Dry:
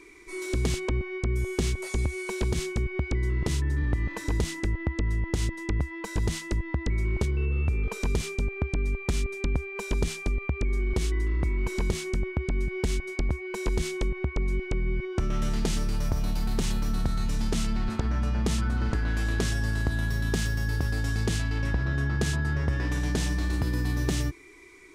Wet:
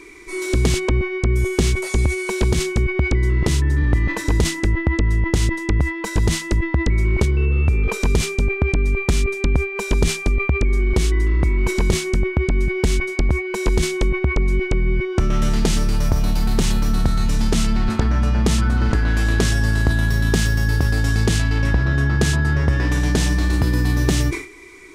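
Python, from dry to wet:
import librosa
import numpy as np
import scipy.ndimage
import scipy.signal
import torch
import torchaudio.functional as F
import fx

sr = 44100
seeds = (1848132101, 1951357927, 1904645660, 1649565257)

y = fx.sustainer(x, sr, db_per_s=120.0)
y = y * 10.0 ** (9.0 / 20.0)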